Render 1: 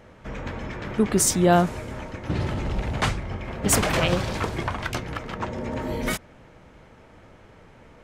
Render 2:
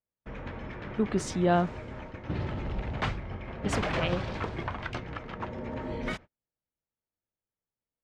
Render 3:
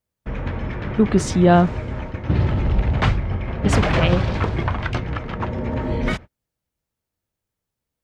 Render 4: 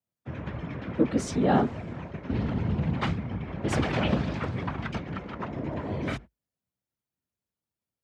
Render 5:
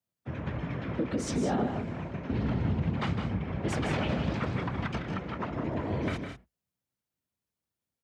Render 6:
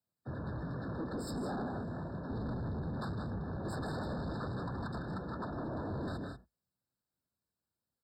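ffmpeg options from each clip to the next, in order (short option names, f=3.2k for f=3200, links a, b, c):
-af "lowpass=3.7k,agate=range=-42dB:threshold=-37dB:ratio=16:detection=peak,volume=-6.5dB"
-af "equalizer=f=66:t=o:w=2.8:g=7.5,volume=9dB"
-af "afftfilt=real='hypot(re,im)*cos(2*PI*random(0))':imag='hypot(re,im)*sin(2*PI*random(1))':win_size=512:overlap=0.75,afreqshift=51,volume=-3dB"
-filter_complex "[0:a]alimiter=limit=-21dB:level=0:latency=1:release=123,asplit=2[a][b];[b]aecho=0:1:157|189:0.376|0.282[c];[a][c]amix=inputs=2:normalize=0"
-af "asoftclip=type=tanh:threshold=-34dB,afftfilt=real='re*eq(mod(floor(b*sr/1024/1800),2),0)':imag='im*eq(mod(floor(b*sr/1024/1800),2),0)':win_size=1024:overlap=0.75,volume=-1dB"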